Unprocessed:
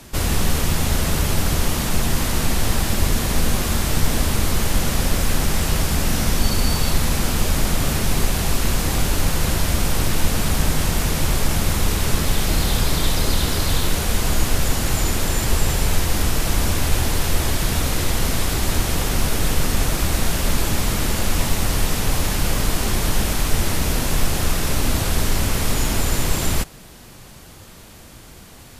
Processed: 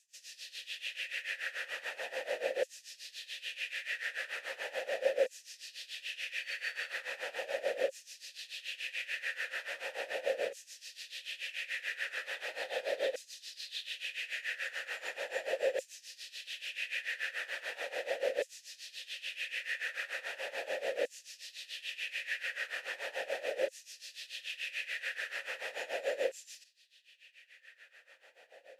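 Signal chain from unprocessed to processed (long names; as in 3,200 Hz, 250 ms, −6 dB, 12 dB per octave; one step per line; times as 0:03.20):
amplitude tremolo 6.9 Hz, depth 86%
auto-filter high-pass saw down 0.38 Hz 480–7,100 Hz
formant filter e
level +3.5 dB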